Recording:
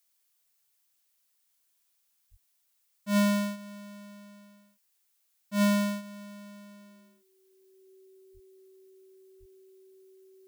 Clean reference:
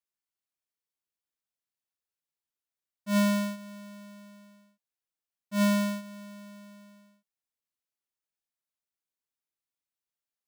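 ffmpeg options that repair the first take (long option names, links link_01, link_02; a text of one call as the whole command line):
ffmpeg -i in.wav -filter_complex "[0:a]bandreject=frequency=380:width=30,asplit=3[link_01][link_02][link_03];[link_01]afade=type=out:start_time=2.3:duration=0.02[link_04];[link_02]highpass=frequency=140:width=0.5412,highpass=frequency=140:width=1.3066,afade=type=in:start_time=2.3:duration=0.02,afade=type=out:start_time=2.42:duration=0.02[link_05];[link_03]afade=type=in:start_time=2.42:duration=0.02[link_06];[link_04][link_05][link_06]amix=inputs=3:normalize=0,asplit=3[link_07][link_08][link_09];[link_07]afade=type=out:start_time=8.33:duration=0.02[link_10];[link_08]highpass=frequency=140:width=0.5412,highpass=frequency=140:width=1.3066,afade=type=in:start_time=8.33:duration=0.02,afade=type=out:start_time=8.45:duration=0.02[link_11];[link_09]afade=type=in:start_time=8.45:duration=0.02[link_12];[link_10][link_11][link_12]amix=inputs=3:normalize=0,asplit=3[link_13][link_14][link_15];[link_13]afade=type=out:start_time=9.39:duration=0.02[link_16];[link_14]highpass=frequency=140:width=0.5412,highpass=frequency=140:width=1.3066,afade=type=in:start_time=9.39:duration=0.02,afade=type=out:start_time=9.51:duration=0.02[link_17];[link_15]afade=type=in:start_time=9.51:duration=0.02[link_18];[link_16][link_17][link_18]amix=inputs=3:normalize=0,agate=range=-21dB:threshold=-65dB,asetnsamples=nb_out_samples=441:pad=0,asendcmd='8.53 volume volume -7.5dB',volume=0dB" out.wav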